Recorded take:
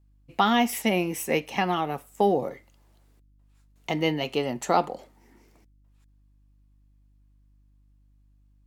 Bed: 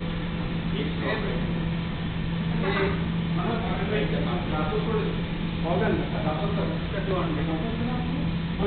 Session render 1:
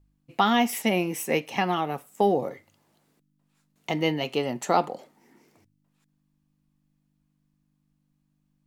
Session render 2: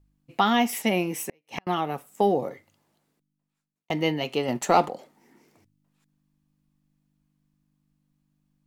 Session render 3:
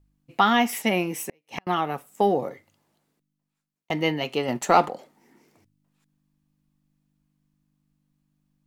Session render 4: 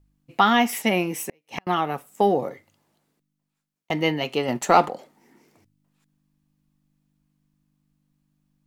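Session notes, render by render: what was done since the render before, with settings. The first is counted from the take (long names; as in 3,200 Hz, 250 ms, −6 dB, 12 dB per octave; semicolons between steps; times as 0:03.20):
hum removal 50 Hz, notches 2
0:01.22–0:01.67: gate with flip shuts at −20 dBFS, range −40 dB; 0:02.39–0:03.90: fade out; 0:04.48–0:04.90: leveller curve on the samples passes 1
dynamic equaliser 1,500 Hz, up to +5 dB, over −36 dBFS, Q 1.1
level +1.5 dB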